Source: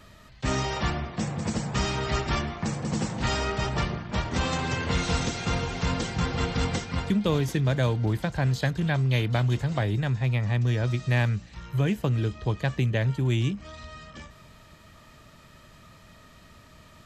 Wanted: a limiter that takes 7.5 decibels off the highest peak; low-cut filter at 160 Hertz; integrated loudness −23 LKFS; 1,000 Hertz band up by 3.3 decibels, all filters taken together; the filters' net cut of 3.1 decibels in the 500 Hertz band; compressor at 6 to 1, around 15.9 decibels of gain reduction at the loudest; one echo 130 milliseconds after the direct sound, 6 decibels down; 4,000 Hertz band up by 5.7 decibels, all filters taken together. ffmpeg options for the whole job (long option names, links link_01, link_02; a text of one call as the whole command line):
ffmpeg -i in.wav -af "highpass=160,equalizer=frequency=500:width_type=o:gain=-5.5,equalizer=frequency=1000:width_type=o:gain=5.5,equalizer=frequency=4000:width_type=o:gain=7,acompressor=threshold=-40dB:ratio=6,alimiter=level_in=9dB:limit=-24dB:level=0:latency=1,volume=-9dB,aecho=1:1:130:0.501,volume=20dB" out.wav